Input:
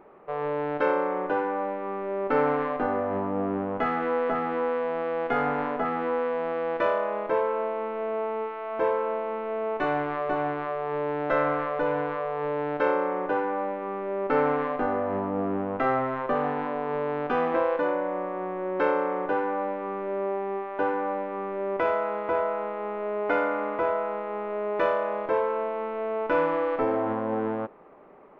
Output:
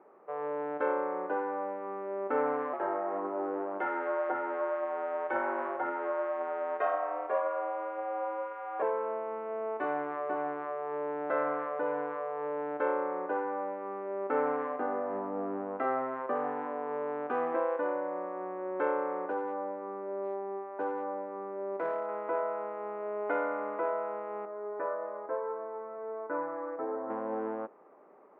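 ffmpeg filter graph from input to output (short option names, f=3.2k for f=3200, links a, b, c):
-filter_complex "[0:a]asettb=1/sr,asplit=3[a][b][c];[a]atrim=end=2.734[d];[b]atrim=start=2.73:end=8.82,asetpts=PTS-STARTPTS,afade=t=in:d=0.004:c=qsin,afade=t=out:st=6.086:d=0.004:c=qsin,afreqshift=100,aphaser=in_gain=1:out_gain=1:delay=4.2:decay=0.26:speed=1.9:type=triangular[e];[c]atrim=start=8.816[f];[d][e]acrossfade=d=0.004:c1=hsin:c2=qsin[g];[g][f]acrossfade=d=0.004:c1=qsin:c2=hsin,asettb=1/sr,asplit=3[h][i][j];[h]atrim=end=19.304[k];[i]atrim=start=19.3:end=22.09,asetpts=PTS-STARTPTS,afade=t=in:d=0.004:c=qsin,afade=t=out:st=2.786:d=0.004:c=qsin,lowpass=f=1.2k:p=1,aeval=exprs='clip(val(0),-1,0.0708)':c=same[l];[j]atrim=start=22.086[m];[k][l]acrossfade=d=0.004:c1=hsin:c2=qsin[n];[n][m]acrossfade=d=0.004:c1=qsin:c2=hsin,asettb=1/sr,asplit=3[o][p][q];[o]atrim=end=24.454[r];[p]atrim=start=24.45:end=27.1,asetpts=PTS-STARTPTS,afade=t=in:d=0.004:c=qsin,afade=t=out:st=2.646:d=0.004:c=qsin,lowpass=f=1.8k:w=0.5412,lowpass=f=1.8k:w=1.3066,flanger=delay=6.2:depth=1.4:regen=47:speed=1.7:shape=triangular[s];[q]atrim=start=27.096[t];[r][s]acrossfade=d=0.004:c1=hsin:c2=qsin[u];[u][t]acrossfade=d=0.004:c1=qsin:c2=hsin,highpass=40,acrossover=split=220 2100:gain=0.0891 1 0.126[v][w][x];[v][w][x]amix=inputs=3:normalize=0,volume=-5.5dB"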